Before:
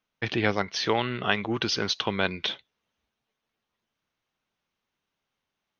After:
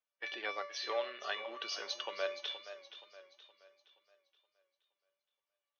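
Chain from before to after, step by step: bin magnitudes rounded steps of 15 dB; HPF 440 Hz 24 dB/oct; resonator 580 Hz, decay 0.41 s, mix 90%; warbling echo 0.472 s, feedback 43%, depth 77 cents, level -12.5 dB; gain +5 dB

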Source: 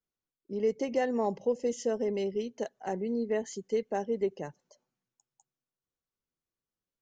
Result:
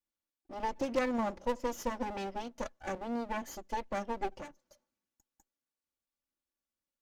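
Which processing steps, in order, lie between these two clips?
minimum comb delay 3.5 ms; added harmonics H 2 -7 dB, 4 -13 dB, 5 -23 dB, 7 -29 dB, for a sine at -17.5 dBFS; gain -2 dB

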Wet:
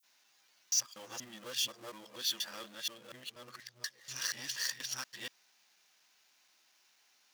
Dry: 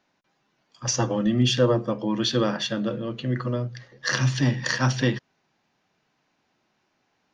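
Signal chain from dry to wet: local time reversal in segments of 0.24 s; power-law curve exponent 0.7; differentiator; gain -6 dB

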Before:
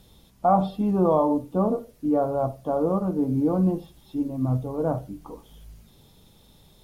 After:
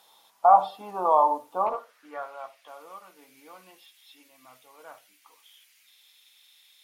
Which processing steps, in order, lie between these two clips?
high-pass sweep 890 Hz -> 2200 Hz, 1.62–2.34; 1.66–2.68 overdrive pedal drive 13 dB, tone 1700 Hz, clips at -15.5 dBFS

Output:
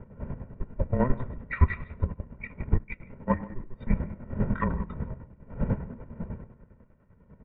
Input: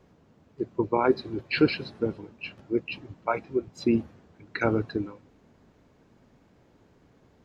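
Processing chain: half-wave gain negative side -7 dB; wind noise 290 Hz -34 dBFS; bell 610 Hz +10.5 dB 0.38 oct; speakerphone echo 0.15 s, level -14 dB; reverb RT60 0.85 s, pre-delay 6 ms, DRR 14.5 dB; 2.1–3 transient shaper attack +11 dB, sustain -8 dB; 4.01–4.61 doubler 24 ms -3 dB; mistuned SSB -380 Hz 220–2600 Hz; chopper 10 Hz, depth 60%, duty 40%

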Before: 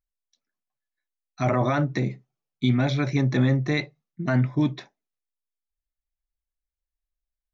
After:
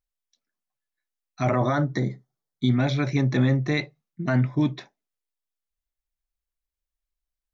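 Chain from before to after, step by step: 1.6–2.77 Butterworth band-stop 2600 Hz, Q 2.5

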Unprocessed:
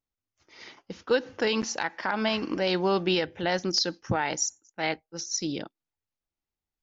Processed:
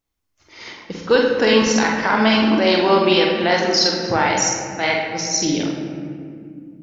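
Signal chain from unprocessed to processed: 2.39–5.07 tone controls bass -10 dB, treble -2 dB; reverb RT60 2.2 s, pre-delay 45 ms, DRR -1.5 dB; gain +8 dB

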